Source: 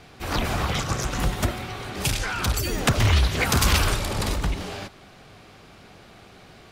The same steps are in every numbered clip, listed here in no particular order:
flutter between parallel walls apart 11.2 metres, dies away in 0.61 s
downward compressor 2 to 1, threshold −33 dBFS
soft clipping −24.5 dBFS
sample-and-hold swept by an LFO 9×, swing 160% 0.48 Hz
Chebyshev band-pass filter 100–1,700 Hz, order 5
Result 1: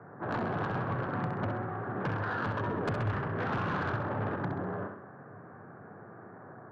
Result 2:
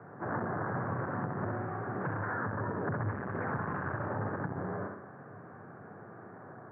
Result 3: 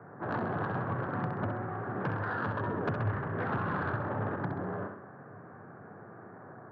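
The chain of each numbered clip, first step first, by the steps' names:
sample-and-hold swept by an LFO, then Chebyshev band-pass filter, then soft clipping, then downward compressor, then flutter between parallel walls
sample-and-hold swept by an LFO, then flutter between parallel walls, then soft clipping, then Chebyshev band-pass filter, then downward compressor
sample-and-hold swept by an LFO, then Chebyshev band-pass filter, then downward compressor, then soft clipping, then flutter between parallel walls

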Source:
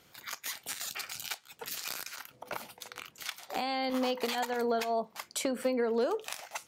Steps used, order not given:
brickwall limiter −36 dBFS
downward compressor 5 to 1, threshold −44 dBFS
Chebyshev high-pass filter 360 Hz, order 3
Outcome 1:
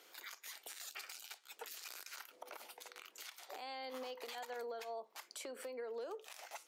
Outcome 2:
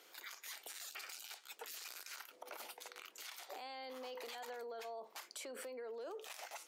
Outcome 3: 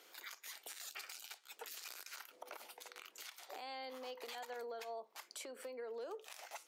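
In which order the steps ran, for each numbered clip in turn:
Chebyshev high-pass filter, then downward compressor, then brickwall limiter
brickwall limiter, then Chebyshev high-pass filter, then downward compressor
downward compressor, then brickwall limiter, then Chebyshev high-pass filter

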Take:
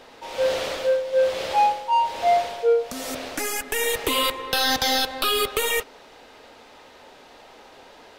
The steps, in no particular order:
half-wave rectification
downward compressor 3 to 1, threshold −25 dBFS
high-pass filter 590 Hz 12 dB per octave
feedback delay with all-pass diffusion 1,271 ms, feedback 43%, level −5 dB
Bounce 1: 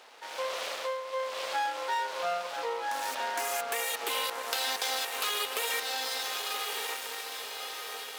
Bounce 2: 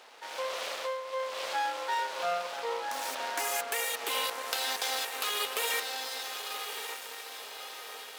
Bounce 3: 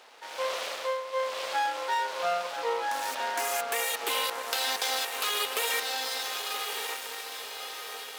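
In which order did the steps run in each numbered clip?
feedback delay with all-pass diffusion, then half-wave rectification, then downward compressor, then high-pass filter
downward compressor, then feedback delay with all-pass diffusion, then half-wave rectification, then high-pass filter
feedback delay with all-pass diffusion, then half-wave rectification, then high-pass filter, then downward compressor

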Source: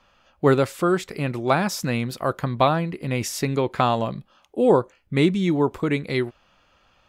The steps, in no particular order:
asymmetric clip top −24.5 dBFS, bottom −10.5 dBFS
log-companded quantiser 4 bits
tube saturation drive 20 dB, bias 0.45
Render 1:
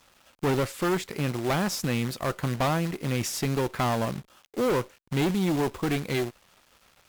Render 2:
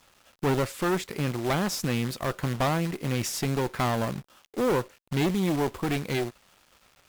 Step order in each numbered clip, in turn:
log-companded quantiser, then tube saturation, then asymmetric clip
asymmetric clip, then log-companded quantiser, then tube saturation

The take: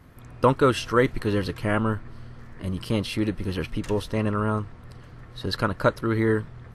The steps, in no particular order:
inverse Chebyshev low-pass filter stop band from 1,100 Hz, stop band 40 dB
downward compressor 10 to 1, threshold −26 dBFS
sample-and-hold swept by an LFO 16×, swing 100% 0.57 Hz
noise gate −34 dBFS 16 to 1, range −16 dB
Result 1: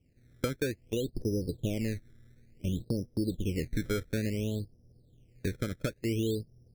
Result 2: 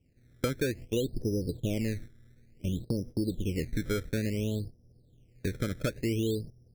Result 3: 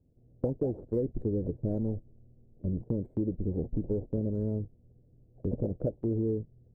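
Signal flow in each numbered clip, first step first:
downward compressor, then inverse Chebyshev low-pass filter, then noise gate, then sample-and-hold swept by an LFO
inverse Chebyshev low-pass filter, then noise gate, then sample-and-hold swept by an LFO, then downward compressor
sample-and-hold swept by an LFO, then inverse Chebyshev low-pass filter, then downward compressor, then noise gate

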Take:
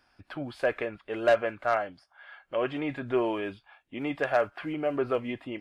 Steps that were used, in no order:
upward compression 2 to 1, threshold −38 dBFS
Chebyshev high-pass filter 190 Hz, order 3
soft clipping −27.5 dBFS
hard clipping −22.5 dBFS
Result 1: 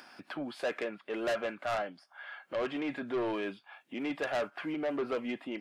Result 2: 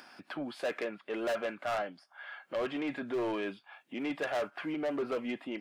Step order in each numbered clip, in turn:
Chebyshev high-pass filter, then hard clipping, then upward compression, then soft clipping
upward compression, then hard clipping, then Chebyshev high-pass filter, then soft clipping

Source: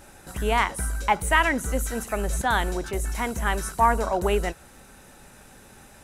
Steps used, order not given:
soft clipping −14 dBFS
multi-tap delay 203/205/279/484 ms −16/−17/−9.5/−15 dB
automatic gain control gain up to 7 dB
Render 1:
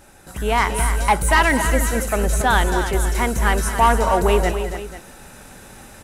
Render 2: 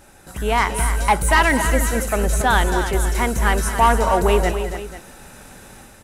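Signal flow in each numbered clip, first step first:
soft clipping, then multi-tap delay, then automatic gain control
soft clipping, then automatic gain control, then multi-tap delay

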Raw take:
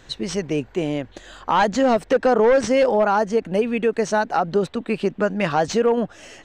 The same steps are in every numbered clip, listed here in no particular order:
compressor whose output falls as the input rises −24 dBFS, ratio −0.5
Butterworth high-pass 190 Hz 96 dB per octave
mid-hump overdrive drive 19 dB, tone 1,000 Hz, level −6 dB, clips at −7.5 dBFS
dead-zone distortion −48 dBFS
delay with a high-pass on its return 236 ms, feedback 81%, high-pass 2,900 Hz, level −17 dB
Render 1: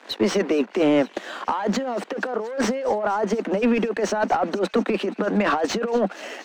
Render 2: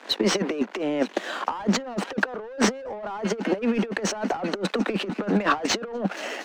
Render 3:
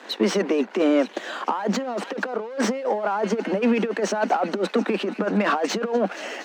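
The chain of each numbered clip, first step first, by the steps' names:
dead-zone distortion, then compressor whose output falls as the input rises, then Butterworth high-pass, then mid-hump overdrive, then delay with a high-pass on its return
delay with a high-pass on its return, then dead-zone distortion, then Butterworth high-pass, then mid-hump overdrive, then compressor whose output falls as the input rises
delay with a high-pass on its return, then compressor whose output falls as the input rises, then dead-zone distortion, then mid-hump overdrive, then Butterworth high-pass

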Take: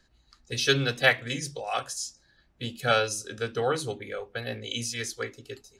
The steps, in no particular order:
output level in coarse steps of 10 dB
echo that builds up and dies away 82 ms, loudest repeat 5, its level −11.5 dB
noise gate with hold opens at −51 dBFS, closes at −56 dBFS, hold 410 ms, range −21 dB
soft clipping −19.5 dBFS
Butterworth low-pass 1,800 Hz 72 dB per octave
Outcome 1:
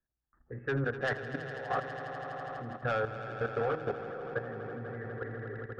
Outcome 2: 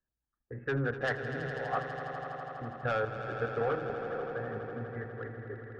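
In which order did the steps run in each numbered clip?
noise gate with hold, then Butterworth low-pass, then soft clipping, then echo that builds up and dies away, then output level in coarse steps
Butterworth low-pass, then soft clipping, then output level in coarse steps, then noise gate with hold, then echo that builds up and dies away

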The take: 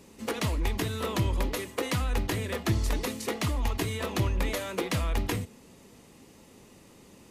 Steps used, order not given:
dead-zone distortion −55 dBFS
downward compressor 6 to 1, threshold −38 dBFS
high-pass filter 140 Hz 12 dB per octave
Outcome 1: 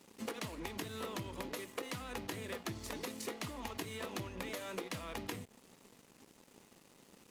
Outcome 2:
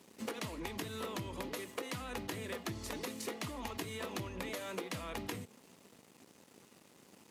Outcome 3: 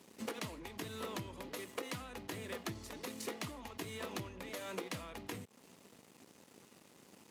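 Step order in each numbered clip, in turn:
high-pass filter, then downward compressor, then dead-zone distortion
dead-zone distortion, then high-pass filter, then downward compressor
downward compressor, then dead-zone distortion, then high-pass filter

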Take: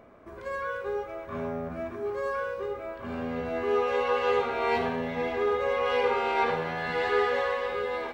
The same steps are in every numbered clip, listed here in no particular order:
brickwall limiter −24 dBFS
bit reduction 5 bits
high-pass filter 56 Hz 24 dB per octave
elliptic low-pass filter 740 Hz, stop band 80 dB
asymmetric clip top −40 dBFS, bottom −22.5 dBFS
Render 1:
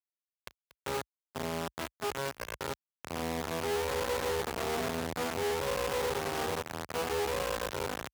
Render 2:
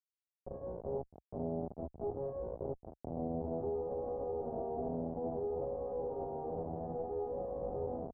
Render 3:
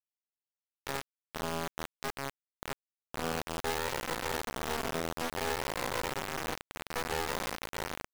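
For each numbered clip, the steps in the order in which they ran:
elliptic low-pass filter, then bit reduction, then asymmetric clip, then high-pass filter, then brickwall limiter
bit reduction, then high-pass filter, then brickwall limiter, then asymmetric clip, then elliptic low-pass filter
elliptic low-pass filter, then brickwall limiter, then asymmetric clip, then high-pass filter, then bit reduction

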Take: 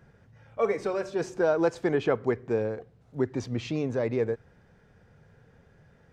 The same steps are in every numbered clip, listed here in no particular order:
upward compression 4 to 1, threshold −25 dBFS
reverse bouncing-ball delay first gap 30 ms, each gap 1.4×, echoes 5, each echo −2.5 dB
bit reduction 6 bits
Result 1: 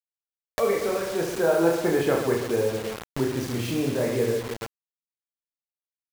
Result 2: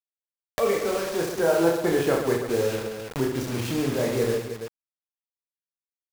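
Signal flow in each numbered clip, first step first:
reverse bouncing-ball delay, then bit reduction, then upward compression
bit reduction, then reverse bouncing-ball delay, then upward compression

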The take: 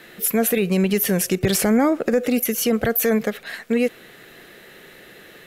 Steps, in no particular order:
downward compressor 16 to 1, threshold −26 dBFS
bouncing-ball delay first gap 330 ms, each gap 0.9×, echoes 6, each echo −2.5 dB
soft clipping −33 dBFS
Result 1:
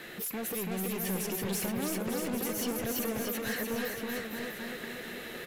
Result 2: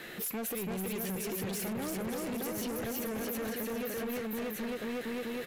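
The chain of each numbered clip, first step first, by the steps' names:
downward compressor, then soft clipping, then bouncing-ball delay
bouncing-ball delay, then downward compressor, then soft clipping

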